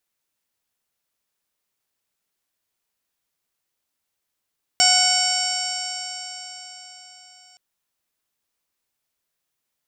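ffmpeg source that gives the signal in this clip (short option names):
-f lavfi -i "aevalsrc='0.0891*pow(10,-3*t/4.44)*sin(2*PI*733.06*t)+0.0447*pow(10,-3*t/4.44)*sin(2*PI*1472.47*t)+0.0596*pow(10,-3*t/4.44)*sin(2*PI*2224.47*t)+0.0708*pow(10,-3*t/4.44)*sin(2*PI*2995.16*t)+0.0141*pow(10,-3*t/4.44)*sin(2*PI*3790.35*t)+0.0794*pow(10,-3*t/4.44)*sin(2*PI*4615.57*t)+0.168*pow(10,-3*t/4.44)*sin(2*PI*5475.97*t)+0.0251*pow(10,-3*t/4.44)*sin(2*PI*6376.32*t)+0.106*pow(10,-3*t/4.44)*sin(2*PI*7320.98*t)+0.0531*pow(10,-3*t/4.44)*sin(2*PI*8313.92*t)':d=2.77:s=44100"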